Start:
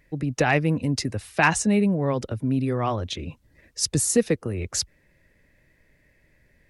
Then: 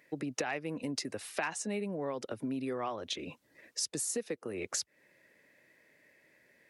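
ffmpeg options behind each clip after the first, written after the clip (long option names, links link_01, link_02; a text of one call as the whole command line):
ffmpeg -i in.wav -af "highpass=310,acompressor=threshold=-33dB:ratio=6" out.wav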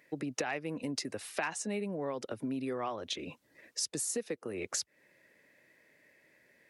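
ffmpeg -i in.wav -af anull out.wav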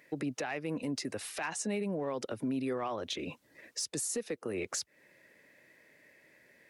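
ffmpeg -i in.wav -filter_complex "[0:a]asplit=2[link_01][link_02];[link_02]volume=28.5dB,asoftclip=hard,volume=-28.5dB,volume=-7dB[link_03];[link_01][link_03]amix=inputs=2:normalize=0,alimiter=level_in=2.5dB:limit=-24dB:level=0:latency=1:release=34,volume=-2.5dB" out.wav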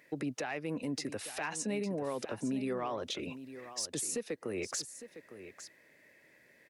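ffmpeg -i in.wav -af "aecho=1:1:857:0.237,volume=-1dB" out.wav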